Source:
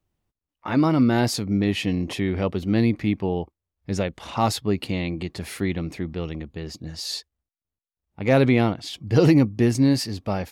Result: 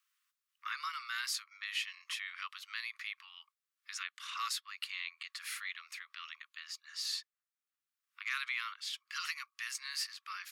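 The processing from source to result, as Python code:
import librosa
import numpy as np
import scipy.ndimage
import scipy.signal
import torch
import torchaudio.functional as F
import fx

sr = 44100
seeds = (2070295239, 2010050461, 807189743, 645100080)

y = scipy.signal.sosfilt(scipy.signal.butter(16, 1100.0, 'highpass', fs=sr, output='sos'), x)
y = fx.band_squash(y, sr, depth_pct=40)
y = F.gain(torch.from_numpy(y), -6.0).numpy()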